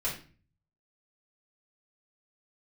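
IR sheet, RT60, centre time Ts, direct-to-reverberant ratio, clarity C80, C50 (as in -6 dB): 0.40 s, 26 ms, -8.0 dB, 12.0 dB, 7.0 dB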